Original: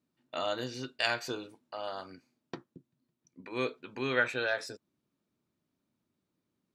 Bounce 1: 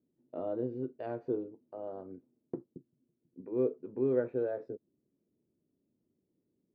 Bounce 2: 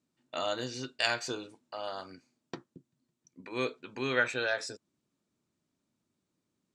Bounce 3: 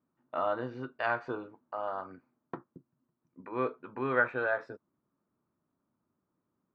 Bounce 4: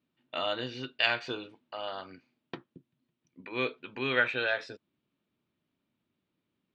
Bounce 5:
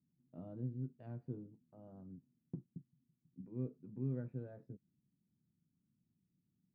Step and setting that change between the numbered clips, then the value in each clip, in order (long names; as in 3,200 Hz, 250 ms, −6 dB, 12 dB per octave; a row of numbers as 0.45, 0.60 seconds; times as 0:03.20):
low-pass with resonance, frequency: 420, 7,800, 1,200, 3,100, 170 Hertz